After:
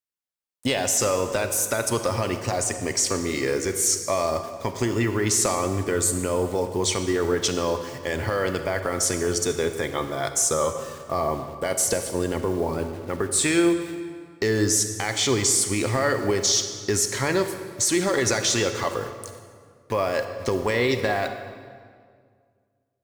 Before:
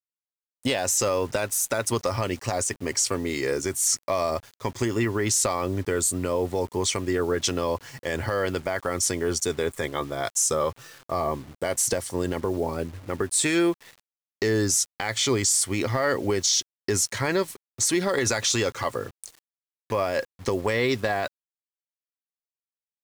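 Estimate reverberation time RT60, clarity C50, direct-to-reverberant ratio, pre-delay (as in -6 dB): 2.0 s, 8.0 dB, 7.5 dB, 30 ms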